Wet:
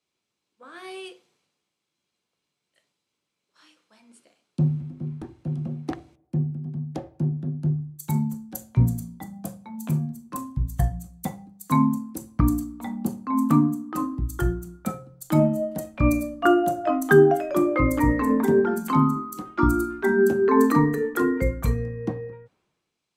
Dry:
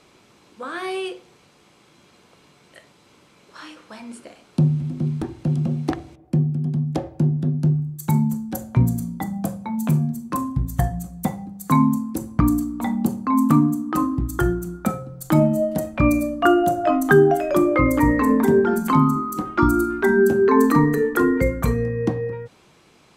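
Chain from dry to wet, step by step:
multiband upward and downward expander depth 70%
level −5 dB

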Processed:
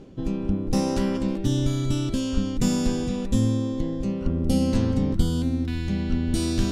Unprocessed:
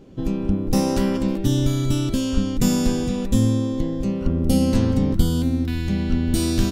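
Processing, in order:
reversed playback
upward compression, threshold −21 dBFS
reversed playback
low-pass filter 9,700 Hz 12 dB per octave
level −3.5 dB

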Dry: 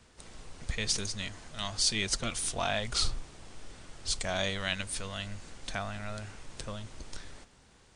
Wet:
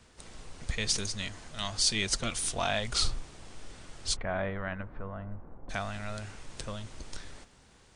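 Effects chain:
0:04.15–0:05.69: low-pass filter 2,100 Hz → 1,000 Hz 24 dB per octave
level +1 dB

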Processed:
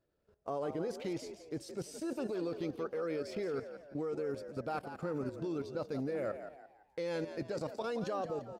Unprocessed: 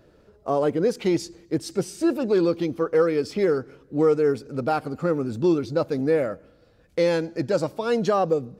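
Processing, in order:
noise gate −53 dBFS, range −10 dB
parametric band 220 Hz −3 dB 1.1 octaves
output level in coarse steps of 15 dB
on a send: echo with shifted repeats 171 ms, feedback 37%, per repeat +69 Hz, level −10 dB
on the sum: level −6 dB

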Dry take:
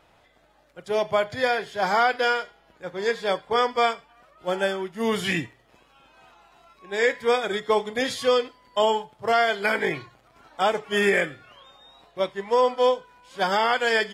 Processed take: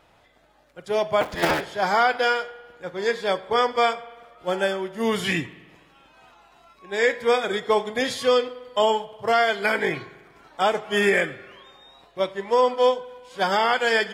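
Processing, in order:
0:01.21–0:01.61: sub-harmonics by changed cycles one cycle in 3, inverted
spring reverb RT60 1.4 s, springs 48 ms, chirp 30 ms, DRR 17 dB
level +1 dB

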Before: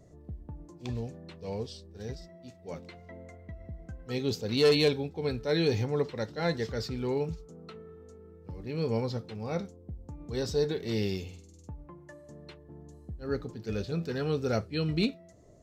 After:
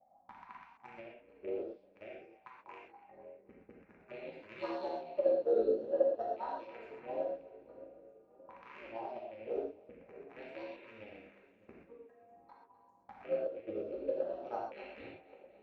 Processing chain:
loose part that buzzes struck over −44 dBFS, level −25 dBFS
dynamic equaliser 1,900 Hz, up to +4 dB, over −47 dBFS, Q 1.2
ring modulation 110 Hz
in parallel at −3 dB: downward compressor, threshold −44 dBFS, peak gain reduction 21 dB
on the sum: LFO wah 0.49 Hz 440–1,000 Hz, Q 7.7
phaser swept by the level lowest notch 370 Hz, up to 2,300 Hz, full sweep at −43.5 dBFS
on a send: echo with a time of its own for lows and highs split 560 Hz, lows 618 ms, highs 253 ms, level −13.5 dB
on the sum: transient designer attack +9 dB, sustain −4 dB
reverb whose tail is shaped and stops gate 150 ms flat, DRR −3 dB

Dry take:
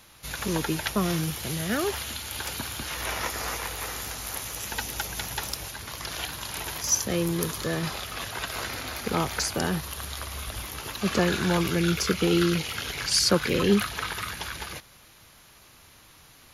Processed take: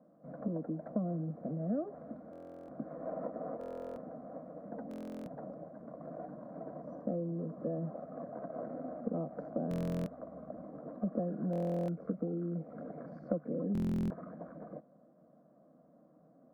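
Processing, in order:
Chebyshev band-pass filter 140–720 Hz, order 3
downward compressor 4 to 1, threshold −33 dBFS, peak gain reduction 13.5 dB
phaser with its sweep stopped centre 580 Hz, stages 8
buffer that repeats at 0:02.31/0:03.59/0:04.89/0:09.69/0:11.51/0:13.73, samples 1,024, times 15
level +3 dB

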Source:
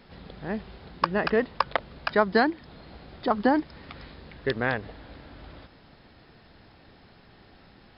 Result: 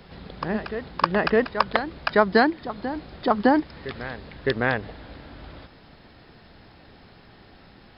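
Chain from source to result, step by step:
backwards echo 610 ms −11.5 dB
level +3.5 dB

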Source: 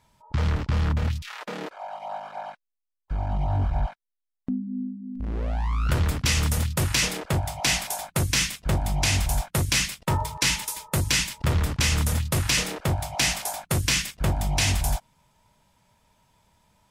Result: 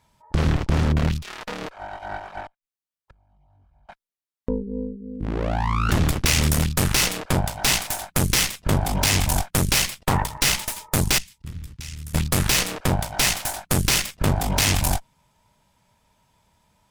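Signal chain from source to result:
0:02.46–0:03.89: gate with flip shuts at −30 dBFS, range −35 dB
0:11.18–0:12.14: guitar amp tone stack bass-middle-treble 6-0-2
harmonic generator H 6 −8 dB, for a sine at −10.5 dBFS

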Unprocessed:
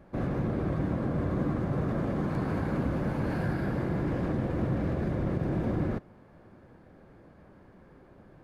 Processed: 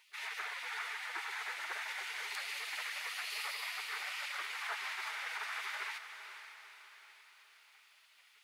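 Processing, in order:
gate on every frequency bin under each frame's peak −30 dB weak
inverse Chebyshev high-pass filter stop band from 170 Hz, stop band 40 dB
on a send: feedback delay with all-pass diffusion 483 ms, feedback 50%, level −9.5 dB
on the sum: level +13.5 dB

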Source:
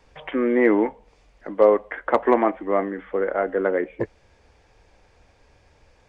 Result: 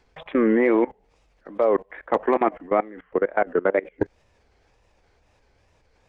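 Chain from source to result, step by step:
tape wow and flutter 150 cents
output level in coarse steps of 22 dB
level +4 dB

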